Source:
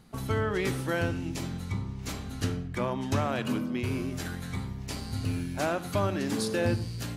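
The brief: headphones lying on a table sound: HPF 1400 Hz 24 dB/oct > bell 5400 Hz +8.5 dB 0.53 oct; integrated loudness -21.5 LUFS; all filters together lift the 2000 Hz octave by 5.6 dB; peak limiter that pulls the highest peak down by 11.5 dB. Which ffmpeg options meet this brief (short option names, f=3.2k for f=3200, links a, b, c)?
-af "equalizer=f=2k:t=o:g=8,alimiter=level_in=0.5dB:limit=-24dB:level=0:latency=1,volume=-0.5dB,highpass=f=1.4k:w=0.5412,highpass=f=1.4k:w=1.3066,equalizer=f=5.4k:t=o:w=0.53:g=8.5,volume=17.5dB"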